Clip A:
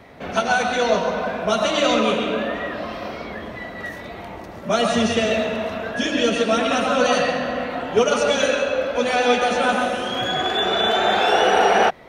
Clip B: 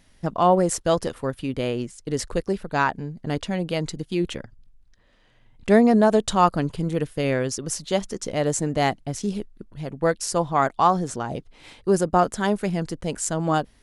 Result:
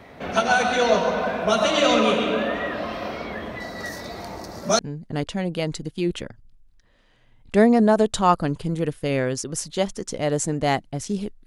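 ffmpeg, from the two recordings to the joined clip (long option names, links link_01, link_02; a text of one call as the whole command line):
ffmpeg -i cue0.wav -i cue1.wav -filter_complex "[0:a]asettb=1/sr,asplit=3[link_01][link_02][link_03];[link_01]atrim=end=3.604[link_04];[link_02]atrim=start=3.6:end=4.79,asetpts=PTS-STARTPTS,afade=type=in:duration=0.004:curve=qsin,afade=type=out:start_time=1.186:duration=0.004:curve=qsin,highshelf=frequency=3800:width_type=q:width=3:gain=7.5[link_05];[link_03]atrim=start=4.786[link_06];[link_04][link_05]acrossfade=duration=0.004:curve1=hsin:curve2=qsin[link_07];[link_07][link_06]acrossfade=duration=0.004:curve1=qsin:curve2=hsin,apad=whole_dur=11.46,atrim=end=11.46,atrim=end=4.792[link_08];[1:a]atrim=start=2.928:end=9.6[link_09];[link_08][link_09]acrossfade=duration=0.004:curve1=hsin:curve2=hsin" out.wav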